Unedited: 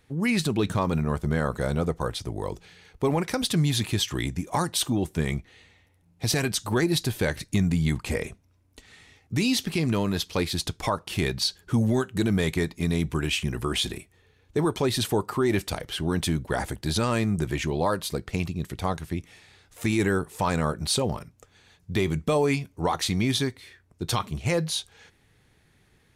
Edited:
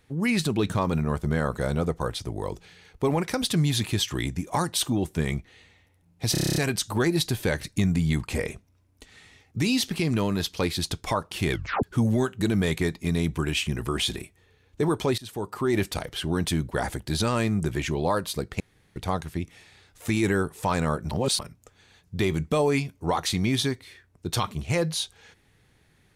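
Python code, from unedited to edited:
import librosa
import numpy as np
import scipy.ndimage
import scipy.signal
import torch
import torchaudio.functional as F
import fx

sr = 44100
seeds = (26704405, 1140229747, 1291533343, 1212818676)

y = fx.edit(x, sr, fx.stutter(start_s=6.32, slice_s=0.03, count=9),
    fx.tape_stop(start_s=11.27, length_s=0.32),
    fx.fade_in_from(start_s=14.94, length_s=0.57, floor_db=-22.5),
    fx.room_tone_fill(start_s=18.36, length_s=0.36),
    fx.reverse_span(start_s=20.87, length_s=0.28), tone=tone)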